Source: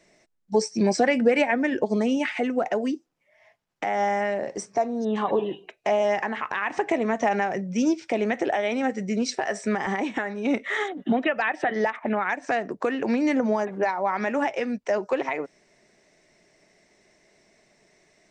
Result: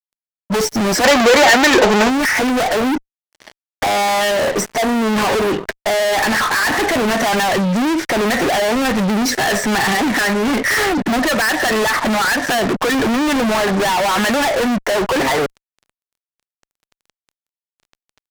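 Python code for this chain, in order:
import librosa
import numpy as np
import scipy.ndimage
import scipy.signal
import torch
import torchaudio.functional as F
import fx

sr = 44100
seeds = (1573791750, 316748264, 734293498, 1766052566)

y = fx.high_shelf_res(x, sr, hz=2200.0, db=-7.0, q=3.0)
y = fx.fuzz(y, sr, gain_db=45.0, gate_db=-51.0)
y = fx.spec_box(y, sr, start_s=1.04, length_s=1.05, low_hz=310.0, high_hz=7800.0, gain_db=7)
y = F.gain(torch.from_numpy(y), -2.0).numpy()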